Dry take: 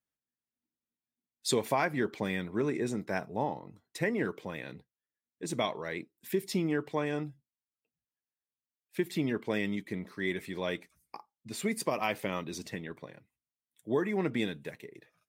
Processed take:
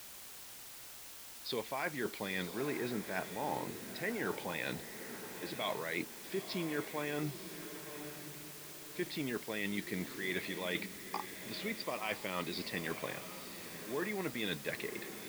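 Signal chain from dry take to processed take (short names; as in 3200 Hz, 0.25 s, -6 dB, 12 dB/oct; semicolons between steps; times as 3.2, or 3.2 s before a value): tilt +2 dB/oct; reverse; compressor 10:1, threshold -44 dBFS, peak gain reduction 21.5 dB; reverse; downsampling 11025 Hz; diffused feedback echo 0.95 s, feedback 42%, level -10 dB; requantised 10-bit, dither triangular; gain +9.5 dB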